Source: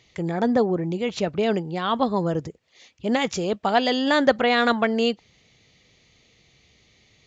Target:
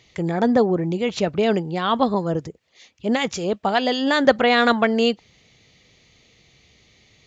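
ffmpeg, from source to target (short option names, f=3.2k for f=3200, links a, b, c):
-filter_complex "[0:a]asettb=1/sr,asplit=3[a][b][c];[a]atrim=end=2.144[d];[b]atrim=start=2.14:end=4.25,asetpts=PTS-STARTPTS,afade=t=in:d=0.004:c=qsin,afade=t=out:st=2.106:d=0.004:c=qsin,acrossover=split=1100[e][f];[e]aeval=exprs='val(0)*(1-0.5/2+0.5/2*cos(2*PI*5.2*n/s))':c=same[g];[f]aeval=exprs='val(0)*(1-0.5/2-0.5/2*cos(2*PI*5.2*n/s))':c=same[h];[g][h]amix=inputs=2:normalize=0[i];[c]atrim=start=4.246[j];[d][i]acrossfade=d=0.004:c1=hsin:c2=qsin[k];[k][j]acrossfade=d=0.004:c1=qsin:c2=hsin,volume=3dB"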